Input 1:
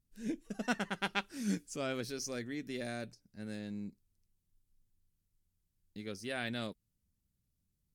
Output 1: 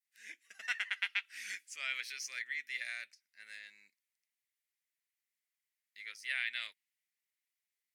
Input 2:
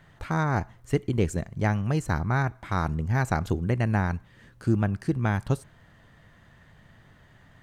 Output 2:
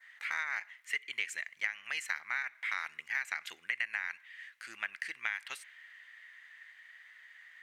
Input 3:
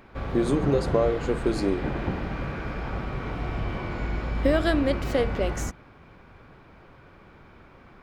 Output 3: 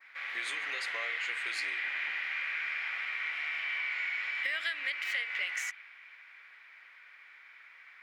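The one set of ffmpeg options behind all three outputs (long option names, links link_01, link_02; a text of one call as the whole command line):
ffmpeg -i in.wav -af "adynamicequalizer=threshold=0.00355:dfrequency=2800:dqfactor=1.5:tfrequency=2800:tqfactor=1.5:attack=5:release=100:ratio=0.375:range=3:mode=boostabove:tftype=bell,highpass=frequency=2000:width_type=q:width=5,acompressor=threshold=-27dB:ratio=10,volume=-3dB" out.wav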